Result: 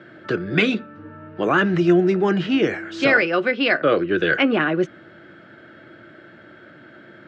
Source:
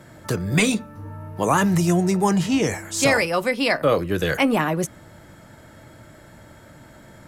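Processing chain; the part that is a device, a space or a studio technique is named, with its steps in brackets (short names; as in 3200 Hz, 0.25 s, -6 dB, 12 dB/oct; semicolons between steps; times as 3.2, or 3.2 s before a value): kitchen radio (speaker cabinet 180–3800 Hz, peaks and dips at 350 Hz +9 dB, 930 Hz -10 dB, 1500 Hz +10 dB, 2900 Hz +4 dB)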